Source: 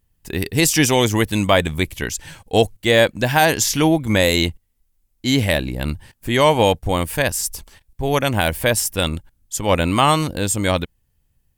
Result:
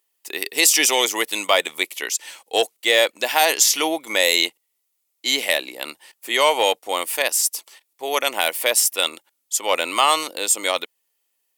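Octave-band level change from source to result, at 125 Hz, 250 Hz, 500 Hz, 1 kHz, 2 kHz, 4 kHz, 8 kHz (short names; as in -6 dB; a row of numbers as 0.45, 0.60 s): under -35 dB, -13.5 dB, -4.0 dB, -1.5 dB, 0.0 dB, +3.0 dB, +3.5 dB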